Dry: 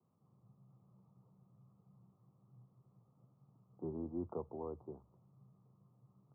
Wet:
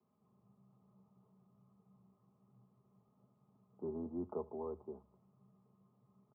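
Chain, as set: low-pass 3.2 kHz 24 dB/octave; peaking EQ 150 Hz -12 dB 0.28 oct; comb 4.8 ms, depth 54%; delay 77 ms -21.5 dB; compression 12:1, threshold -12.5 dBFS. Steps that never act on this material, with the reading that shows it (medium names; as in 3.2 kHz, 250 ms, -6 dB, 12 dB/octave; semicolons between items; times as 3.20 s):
low-pass 3.2 kHz: input has nothing above 1.2 kHz; compression, threshold -12.5 dBFS: peak at its input -28.5 dBFS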